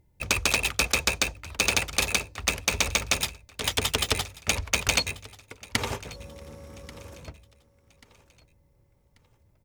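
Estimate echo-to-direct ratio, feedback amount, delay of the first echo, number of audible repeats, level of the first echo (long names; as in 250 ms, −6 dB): −20.0 dB, 36%, 1,137 ms, 2, −20.5 dB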